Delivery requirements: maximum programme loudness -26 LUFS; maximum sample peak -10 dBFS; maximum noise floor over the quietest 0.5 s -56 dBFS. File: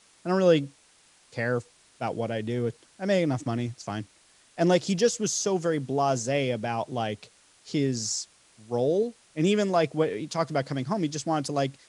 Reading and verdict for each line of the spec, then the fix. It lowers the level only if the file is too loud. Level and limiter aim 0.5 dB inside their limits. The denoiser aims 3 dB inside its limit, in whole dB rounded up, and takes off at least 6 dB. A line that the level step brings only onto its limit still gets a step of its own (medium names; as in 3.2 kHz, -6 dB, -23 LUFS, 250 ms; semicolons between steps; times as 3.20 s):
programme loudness -27.5 LUFS: pass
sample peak -8.5 dBFS: fail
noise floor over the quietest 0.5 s -60 dBFS: pass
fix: peak limiter -10.5 dBFS